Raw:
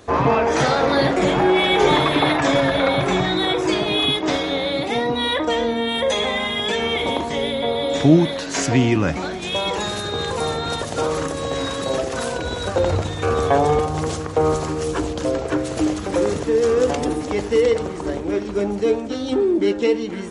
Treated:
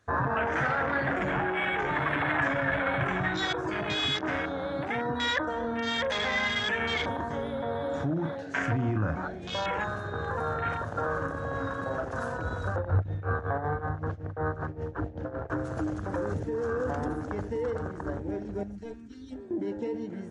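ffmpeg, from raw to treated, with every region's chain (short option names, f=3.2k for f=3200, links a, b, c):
-filter_complex "[0:a]asettb=1/sr,asplit=3[a][b][c];[a]atrim=end=8.064[d];[b]atrim=start=8.06:end=12.11,asetpts=PTS-STARTPTS,afade=t=in:d=0.004:c=qsin,afade=t=out:st=4.046:d=0.004:c=qsin,bass=f=250:g=-2,treble=f=4k:g=-7,asplit=2[e][f];[f]adelay=37,volume=-8.5dB[g];[e][g]amix=inputs=2:normalize=0,atrim=end_sample=178605[h];[c]atrim=start=12.106[i];[d][h]acrossfade=d=0.004:c1=hsin:c2=qsin[j];[j][i]acrossfade=d=0.004:c1=qsin:c2=hsin,asettb=1/sr,asplit=3[k][l][m];[k]atrim=end=12.764[n];[l]atrim=start=12.76:end=15.5,asetpts=PTS-STARTPTS,afade=t=in:d=0.004:c=qsin,afade=t=out:st=2.736:d=0.004:c=qsin,lowpass=2.7k,tremolo=f=5.3:d=0.76[o];[m]atrim=start=15.496[p];[n][o]acrossfade=d=0.004:c1=hsin:c2=qsin[q];[q][p]acrossfade=d=0.004:c1=qsin:c2=hsin,asettb=1/sr,asplit=3[r][s][t];[r]atrim=end=18.634[u];[s]atrim=start=18.63:end=19.51,asetpts=PTS-STARTPTS,afade=t=in:d=0.004:c=qsin,afade=t=out:st=0.876:d=0.004:c=qsin,equalizer=f=460:w=0.46:g=-13.5,aecho=1:1:4.3:0.53,atrim=end_sample=38808,aeval=exprs='(tanh(7.08*val(0)+0.5)-tanh(0.5))/7.08':c=same[v];[t]atrim=start=19.506[w];[u][v]acrossfade=d=0.004:c1=hsin:c2=qsin[x];[x][w]acrossfade=d=0.004:c1=qsin:c2=hsin,alimiter=limit=-13.5dB:level=0:latency=1:release=25,afwtdn=0.0447,equalizer=f=100:t=o:w=0.67:g=9,equalizer=f=400:t=o:w=0.67:g=-5,equalizer=f=1.6k:t=o:w=0.67:g=12,equalizer=f=6.3k:t=o:w=0.67:g=4,volume=-8dB"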